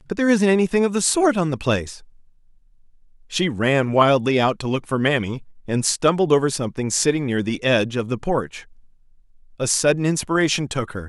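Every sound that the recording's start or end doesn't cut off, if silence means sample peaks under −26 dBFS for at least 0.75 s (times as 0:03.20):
0:03.33–0:08.59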